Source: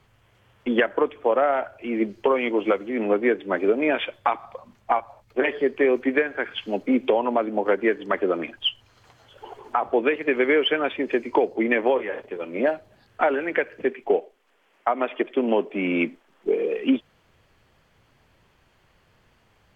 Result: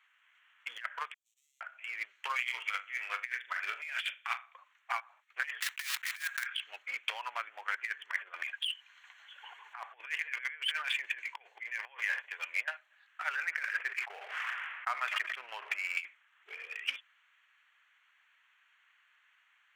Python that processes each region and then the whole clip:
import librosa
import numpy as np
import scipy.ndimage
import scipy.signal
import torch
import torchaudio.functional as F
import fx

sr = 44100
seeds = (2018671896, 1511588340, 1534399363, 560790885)

y = fx.chain(x, sr, fx.halfwave_gain(db=-7.0),
    fx.cheby2_highpass(hz=1600.0, order=4, stop_db=70), at=(1.14, 1.61))
y = fx.chain(y, sr, fx.high_shelf(hz=2800.0, db=11.0),
    fx.room_flutter(wall_m=7.0, rt60_s=0.37),
    fx.upward_expand(threshold_db=-39.0, expansion=1.5), at=(2.35, 4.55))
y = fx.chain(y, sr, fx.block_float(bits=3),
    fx.highpass(hz=760.0, slope=24), at=(5.6, 6.47))
y = fx.chain(y, sr, fx.over_compress(threshold_db=-26.0, ratio=-0.5),
    fx.notch(hz=1300.0, q=7.1), at=(8.11, 12.68))
y = fx.chain(y, sr, fx.lowpass(hz=2000.0, slope=12),
    fx.sustainer(db_per_s=36.0), at=(13.36, 15.97))
y = fx.wiener(y, sr, points=9)
y = scipy.signal.sosfilt(scipy.signal.butter(4, 1500.0, 'highpass', fs=sr, output='sos'), y)
y = fx.over_compress(y, sr, threshold_db=-33.0, ratio=-0.5)